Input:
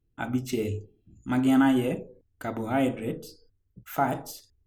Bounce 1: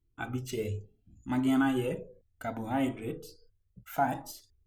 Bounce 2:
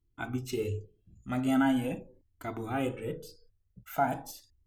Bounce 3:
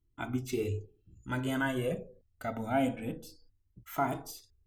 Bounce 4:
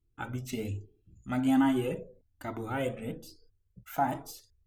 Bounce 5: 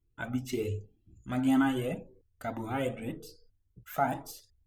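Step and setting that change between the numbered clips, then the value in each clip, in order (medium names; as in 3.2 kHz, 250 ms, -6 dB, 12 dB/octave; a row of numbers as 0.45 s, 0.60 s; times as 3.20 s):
Shepard-style flanger, rate: 0.69 Hz, 0.43 Hz, 0.26 Hz, 1.2 Hz, 1.9 Hz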